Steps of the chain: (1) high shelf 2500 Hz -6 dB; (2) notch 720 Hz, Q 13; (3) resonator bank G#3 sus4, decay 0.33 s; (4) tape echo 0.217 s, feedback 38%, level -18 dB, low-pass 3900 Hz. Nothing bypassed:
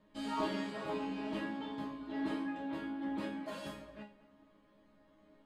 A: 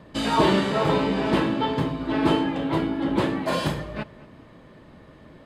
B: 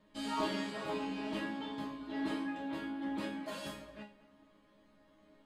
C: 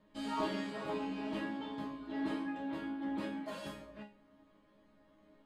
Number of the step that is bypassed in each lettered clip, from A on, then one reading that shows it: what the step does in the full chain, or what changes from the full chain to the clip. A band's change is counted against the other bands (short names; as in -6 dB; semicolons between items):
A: 3, 125 Hz band +7.0 dB; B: 1, 4 kHz band +3.5 dB; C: 4, echo-to-direct -34.0 dB to none